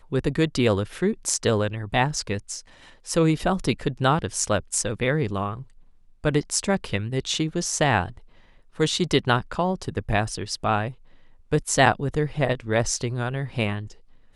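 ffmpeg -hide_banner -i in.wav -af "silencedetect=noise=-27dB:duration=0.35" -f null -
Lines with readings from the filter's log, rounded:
silence_start: 2.58
silence_end: 3.09 | silence_duration: 0.51
silence_start: 5.54
silence_end: 6.24 | silence_duration: 0.70
silence_start: 8.08
silence_end: 8.80 | silence_duration: 0.72
silence_start: 10.88
silence_end: 11.53 | silence_duration: 0.64
silence_start: 13.81
silence_end: 14.35 | silence_duration: 0.54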